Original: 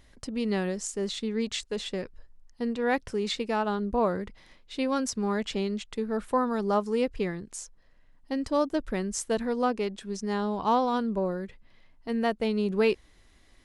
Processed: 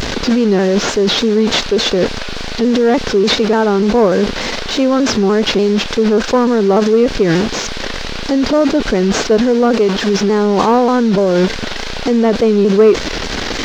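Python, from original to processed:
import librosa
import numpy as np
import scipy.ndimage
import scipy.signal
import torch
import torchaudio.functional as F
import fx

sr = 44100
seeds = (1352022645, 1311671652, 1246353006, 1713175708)

p1 = fx.delta_mod(x, sr, bps=32000, step_db=-35.0)
p2 = fx.peak_eq(p1, sr, hz=540.0, db=7.0, octaves=2.5)
p3 = fx.dmg_noise_band(p2, sr, seeds[0], low_hz=430.0, high_hz=4600.0, level_db=-48.0)
p4 = fx.high_shelf(p3, sr, hz=4500.0, db=8.0)
p5 = fx.small_body(p4, sr, hz=(230.0, 420.0, 1500.0), ring_ms=25, db=6)
p6 = fx.over_compress(p5, sr, threshold_db=-26.0, ratio=-0.5)
p7 = p5 + (p6 * 10.0 ** (1.0 / 20.0))
p8 = fx.leveller(p7, sr, passes=1)
p9 = fx.vibrato_shape(p8, sr, shape='saw_down', rate_hz=3.4, depth_cents=100.0)
y = p9 * 10.0 ** (1.5 / 20.0)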